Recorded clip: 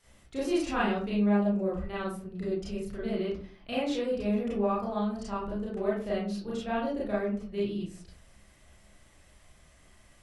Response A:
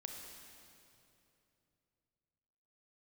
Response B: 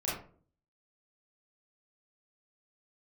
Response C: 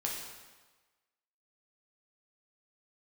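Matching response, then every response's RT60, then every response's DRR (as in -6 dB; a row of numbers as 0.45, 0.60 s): B; 2.9, 0.45, 1.3 s; 1.5, -8.5, -2.5 dB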